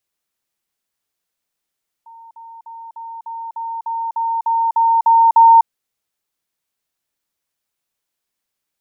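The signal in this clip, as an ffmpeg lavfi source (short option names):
-f lavfi -i "aevalsrc='pow(10,(-37.5+3*floor(t/0.3))/20)*sin(2*PI*915*t)*clip(min(mod(t,0.3),0.25-mod(t,0.3))/0.005,0,1)':d=3.6:s=44100"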